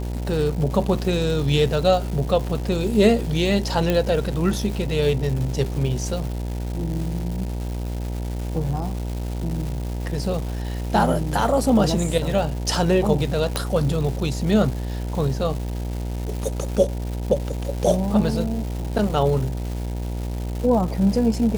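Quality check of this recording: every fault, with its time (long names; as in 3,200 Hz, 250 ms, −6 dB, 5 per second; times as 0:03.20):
mains buzz 60 Hz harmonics 16 −27 dBFS
surface crackle 490 per second −30 dBFS
0:03.90: click −8 dBFS
0:13.56: click −7 dBFS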